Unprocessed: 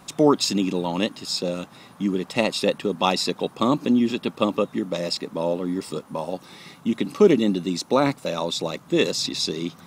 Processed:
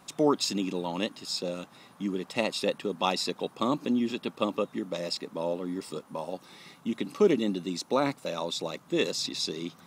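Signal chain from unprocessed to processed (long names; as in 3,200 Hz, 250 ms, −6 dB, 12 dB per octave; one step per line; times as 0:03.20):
low-shelf EQ 150 Hz −6.5 dB
level −6 dB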